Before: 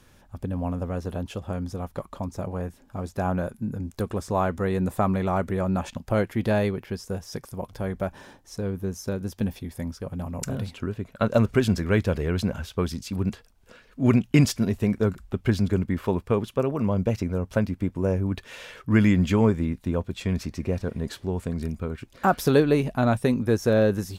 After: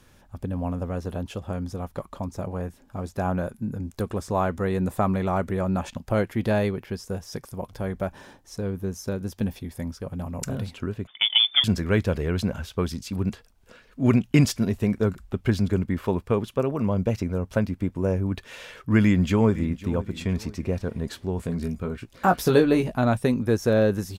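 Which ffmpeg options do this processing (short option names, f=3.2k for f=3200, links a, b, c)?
-filter_complex "[0:a]asettb=1/sr,asplit=3[a][b][c];[a]atrim=end=11.074[d];[b]atrim=start=11.07:end=11.64,asetpts=PTS-STARTPTS,afade=t=in:d=0.004:c=qsin,afade=t=out:st=0.566:d=0.004:c=qsin,lowpass=f=3.1k:t=q:w=0.5098,lowpass=f=3.1k:t=q:w=0.6013,lowpass=f=3.1k:t=q:w=0.9,lowpass=f=3.1k:t=q:w=2.563,afreqshift=-3600[e];[c]atrim=start=11.636[f];[d][e]acrossfade=d=0.004:c1=hsin:c2=qsin[g];[g][f]acrossfade=d=0.004:c1=qsin:c2=hsin,asplit=2[h][i];[i]afade=t=in:st=19.01:d=0.01,afade=t=out:st=19.85:d=0.01,aecho=0:1:510|1020|1530:0.158489|0.0554713|0.0194149[j];[h][j]amix=inputs=2:normalize=0,asettb=1/sr,asplit=3[k][l][m];[k]atrim=end=21.374[n];[l]atrim=start=21.37:end=22.97,asetpts=PTS-STARTPTS,afade=t=in:d=0.004:c=qsin,afade=t=out:st=1.596:d=0.004:c=qsin,asplit=2[o][p];[p]adelay=17,volume=-6dB[q];[o][q]amix=inputs=2:normalize=0,atrim=end_sample=70560[r];[m]atrim=start=22.966[s];[n][r]acrossfade=d=0.004:c1=hsin:c2=qsin[t];[t][s]acrossfade=d=0.004:c1=qsin:c2=hsin"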